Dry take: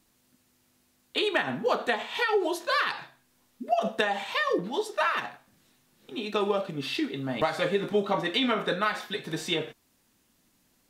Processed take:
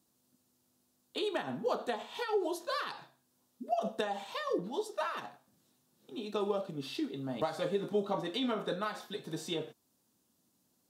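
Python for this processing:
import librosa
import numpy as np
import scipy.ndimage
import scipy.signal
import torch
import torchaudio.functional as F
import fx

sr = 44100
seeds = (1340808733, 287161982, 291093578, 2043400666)

y = scipy.signal.sosfilt(scipy.signal.butter(2, 100.0, 'highpass', fs=sr, output='sos'), x)
y = fx.peak_eq(y, sr, hz=2100.0, db=-11.0, octaves=1.2)
y = y * librosa.db_to_amplitude(-5.5)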